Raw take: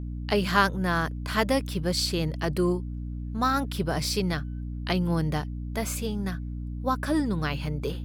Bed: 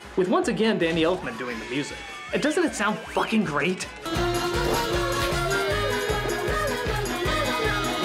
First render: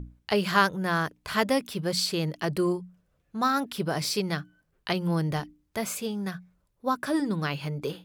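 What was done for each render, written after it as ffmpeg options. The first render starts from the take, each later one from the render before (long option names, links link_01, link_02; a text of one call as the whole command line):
ffmpeg -i in.wav -af "bandreject=frequency=60:width_type=h:width=6,bandreject=frequency=120:width_type=h:width=6,bandreject=frequency=180:width_type=h:width=6,bandreject=frequency=240:width_type=h:width=6,bandreject=frequency=300:width_type=h:width=6" out.wav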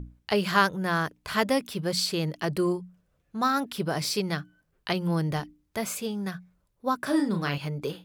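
ffmpeg -i in.wav -filter_complex "[0:a]asettb=1/sr,asplit=3[link_01][link_02][link_03];[link_01]atrim=end=7.024[link_04];[link_02]atrim=start=7.02:end=7.58,asetpts=PTS-STARTPTS,afade=type=in:duration=0.004:curve=qsin,afade=type=out:start_time=0.556:duration=0.004:curve=qsin,asplit=2[link_05][link_06];[link_06]adelay=35,volume=-6dB[link_07];[link_05][link_07]amix=inputs=2:normalize=0,atrim=end_sample=24696[link_08];[link_03]atrim=start=7.576[link_09];[link_04][link_08]acrossfade=duration=0.004:curve1=hsin:curve2=qsin[link_10];[link_10][link_09]acrossfade=duration=0.004:curve1=qsin:curve2=hsin" out.wav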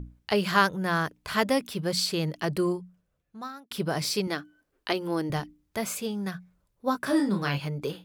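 ffmpeg -i in.wav -filter_complex "[0:a]asettb=1/sr,asplit=3[link_01][link_02][link_03];[link_01]atrim=end=4.274[link_04];[link_02]atrim=start=4.27:end=5.3,asetpts=PTS-STARTPTS,afade=type=in:duration=0.004:curve=qsin,afade=type=out:start_time=1.026:duration=0.004:curve=qsin,lowshelf=frequency=220:width_type=q:width=3:gain=-6.5[link_05];[link_03]atrim=start=5.296[link_06];[link_04][link_05]acrossfade=duration=0.004:curve1=hsin:curve2=qsin[link_07];[link_07][link_06]acrossfade=duration=0.004:curve1=qsin:curve2=hsin,asettb=1/sr,asplit=3[link_08][link_09][link_10];[link_08]atrim=end=6.864[link_11];[link_09]atrim=start=6.86:end=7.6,asetpts=PTS-STARTPTS,afade=type=in:duration=0.004:curve=qsin,afade=type=out:start_time=0.736:duration=0.004:curve=qsin,asplit=2[link_12][link_13];[link_13]adelay=15,volume=-7.5dB[link_14];[link_12][link_14]amix=inputs=2:normalize=0,atrim=end_sample=32634[link_15];[link_10]atrim=start=7.596[link_16];[link_11][link_15]acrossfade=duration=0.004:curve1=hsin:curve2=qsin[link_17];[link_17][link_16]acrossfade=duration=0.004:curve1=qsin:curve2=hsin,asplit=2[link_18][link_19];[link_18]atrim=end=3.71,asetpts=PTS-STARTPTS,afade=type=out:start_time=2.57:duration=1.14[link_20];[link_19]atrim=start=3.71,asetpts=PTS-STARTPTS,afade=type=in:duration=0.004:curve=hsin[link_21];[link_20][link_21]concat=n=2:v=0:a=1" out.wav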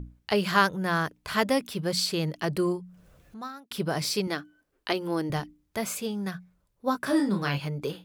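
ffmpeg -i in.wav -filter_complex "[0:a]asettb=1/sr,asplit=3[link_01][link_02][link_03];[link_01]atrim=end=2.544[link_04];[link_02]atrim=start=2.54:end=3.42,asetpts=PTS-STARTPTS,afade=type=in:duration=0.004:curve=qsin,afade=type=out:start_time=0.876:duration=0.004:curve=qsin,acompressor=mode=upward:threshold=-38dB:ratio=2.5:attack=3.2:release=140:knee=2.83:detection=peak[link_05];[link_03]atrim=start=3.416[link_06];[link_04][link_05]acrossfade=duration=0.004:curve1=hsin:curve2=qsin[link_07];[link_07][link_06]acrossfade=duration=0.004:curve1=qsin:curve2=hsin" out.wav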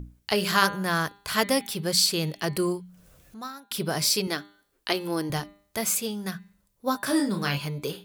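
ffmpeg -i in.wav -af "highshelf=frequency=4200:gain=11,bandreject=frequency=201.1:width_type=h:width=4,bandreject=frequency=402.2:width_type=h:width=4,bandreject=frequency=603.3:width_type=h:width=4,bandreject=frequency=804.4:width_type=h:width=4,bandreject=frequency=1005.5:width_type=h:width=4,bandreject=frequency=1206.6:width_type=h:width=4,bandreject=frequency=1407.7:width_type=h:width=4,bandreject=frequency=1608.8:width_type=h:width=4,bandreject=frequency=1809.9:width_type=h:width=4,bandreject=frequency=2011:width_type=h:width=4,bandreject=frequency=2212.1:width_type=h:width=4,bandreject=frequency=2413.2:width_type=h:width=4,bandreject=frequency=2614.3:width_type=h:width=4,bandreject=frequency=2815.4:width_type=h:width=4,bandreject=frequency=3016.5:width_type=h:width=4,bandreject=frequency=3217.6:width_type=h:width=4,bandreject=frequency=3418.7:width_type=h:width=4,bandreject=frequency=3619.8:width_type=h:width=4,bandreject=frequency=3820.9:width_type=h:width=4,bandreject=frequency=4022:width_type=h:width=4,bandreject=frequency=4223.1:width_type=h:width=4,bandreject=frequency=4424.2:width_type=h:width=4" out.wav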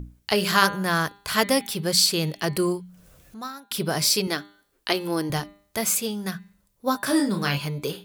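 ffmpeg -i in.wav -af "volume=2.5dB" out.wav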